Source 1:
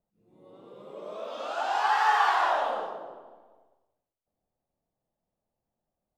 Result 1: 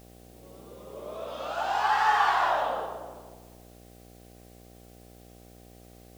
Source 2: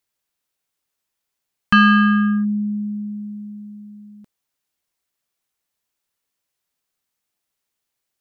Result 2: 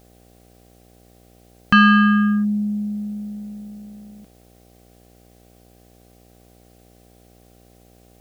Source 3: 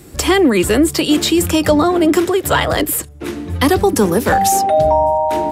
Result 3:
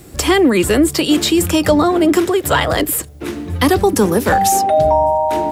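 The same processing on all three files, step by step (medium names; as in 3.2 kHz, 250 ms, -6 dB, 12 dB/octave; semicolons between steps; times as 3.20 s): mains buzz 60 Hz, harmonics 13, -52 dBFS -3 dB/octave; word length cut 10-bit, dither triangular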